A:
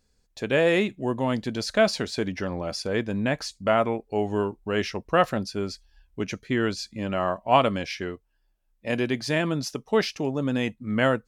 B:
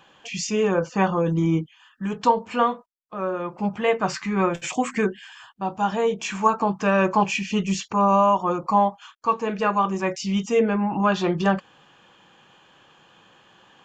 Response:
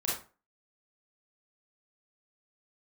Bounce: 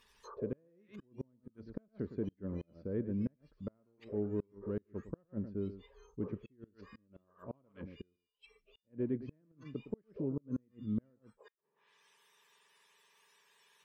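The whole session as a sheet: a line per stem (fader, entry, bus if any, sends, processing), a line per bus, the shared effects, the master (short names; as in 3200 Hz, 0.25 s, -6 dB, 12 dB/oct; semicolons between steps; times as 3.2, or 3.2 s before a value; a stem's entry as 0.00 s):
-4.0 dB, 0.00 s, no send, echo send -12.5 dB, rippled Chebyshev low-pass 6000 Hz, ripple 3 dB
-12.5 dB, 0.00 s, no send, no echo send, spectrum mirrored in octaves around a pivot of 1700 Hz; high shelf 2200 Hz +8 dB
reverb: off
echo: echo 0.111 s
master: flipped gate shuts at -19 dBFS, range -35 dB; bell 750 Hz -13.5 dB 0.58 oct; treble ducked by the level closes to 470 Hz, closed at -43 dBFS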